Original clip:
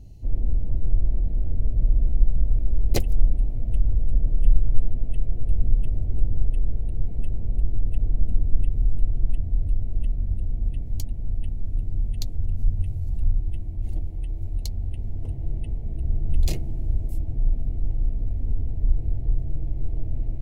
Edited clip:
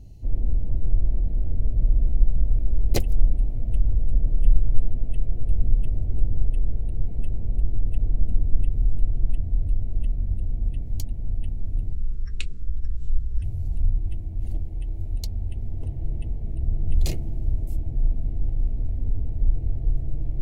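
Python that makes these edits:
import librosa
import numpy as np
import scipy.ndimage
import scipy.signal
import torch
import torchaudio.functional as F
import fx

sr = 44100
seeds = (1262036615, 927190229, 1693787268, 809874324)

y = fx.edit(x, sr, fx.speed_span(start_s=11.93, length_s=0.91, speed=0.61), tone=tone)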